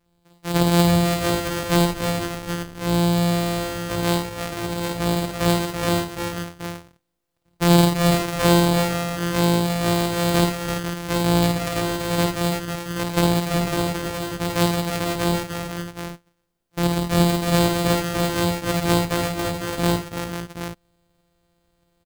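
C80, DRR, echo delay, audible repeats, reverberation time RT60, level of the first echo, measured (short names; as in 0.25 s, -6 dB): none, none, 52 ms, 4, none, -4.0 dB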